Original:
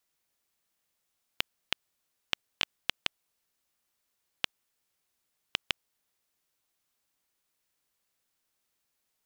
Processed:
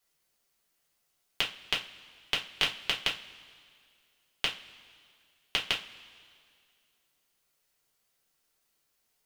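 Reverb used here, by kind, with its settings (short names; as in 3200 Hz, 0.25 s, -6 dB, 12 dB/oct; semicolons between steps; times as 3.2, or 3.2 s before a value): two-slope reverb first 0.25 s, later 2.2 s, from -22 dB, DRR -3.5 dB; gain -1 dB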